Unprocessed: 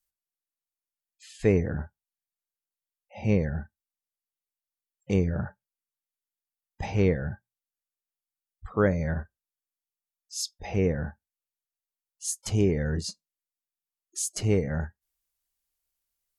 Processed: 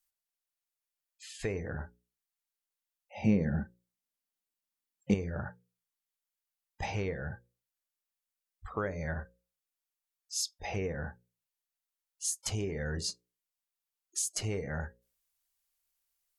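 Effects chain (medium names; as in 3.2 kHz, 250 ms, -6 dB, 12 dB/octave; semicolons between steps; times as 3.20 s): bass shelf 440 Hz -6 dB; hum notches 60/120/180/240/300/360/420/480/540 Hz; compression 6:1, threshold -31 dBFS, peak gain reduction 10.5 dB; peaking EQ 220 Hz -4.5 dB 1.3 oct, from 3.24 s +11 dB, from 5.14 s -3.5 dB; trim +1.5 dB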